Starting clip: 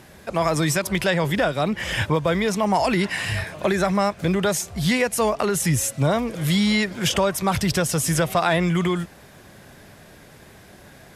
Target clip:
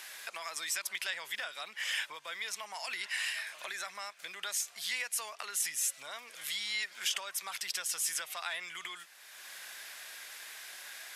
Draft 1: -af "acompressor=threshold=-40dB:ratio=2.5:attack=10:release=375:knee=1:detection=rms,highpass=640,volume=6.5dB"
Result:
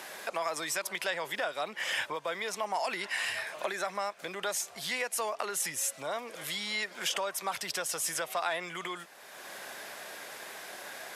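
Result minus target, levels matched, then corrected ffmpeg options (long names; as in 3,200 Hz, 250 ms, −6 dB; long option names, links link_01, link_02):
500 Hz band +13.5 dB
-af "acompressor=threshold=-40dB:ratio=2.5:attack=10:release=375:knee=1:detection=rms,highpass=1800,volume=6.5dB"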